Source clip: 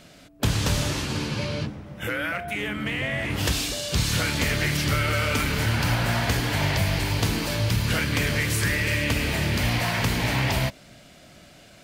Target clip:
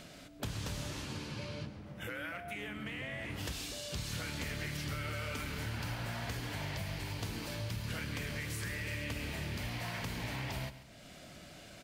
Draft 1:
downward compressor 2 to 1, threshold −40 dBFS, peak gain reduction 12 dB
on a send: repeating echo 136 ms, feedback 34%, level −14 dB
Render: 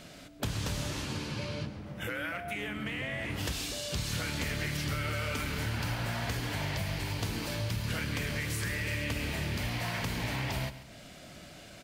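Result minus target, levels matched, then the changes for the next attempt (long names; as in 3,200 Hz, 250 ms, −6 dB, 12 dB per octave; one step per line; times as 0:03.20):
downward compressor: peak gain reduction −5.5 dB
change: downward compressor 2 to 1, threshold −51 dBFS, peak gain reduction 17.5 dB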